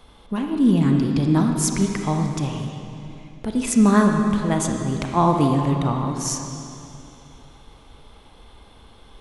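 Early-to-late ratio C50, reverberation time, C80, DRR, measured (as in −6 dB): 3.0 dB, 2.8 s, 4.5 dB, 2.5 dB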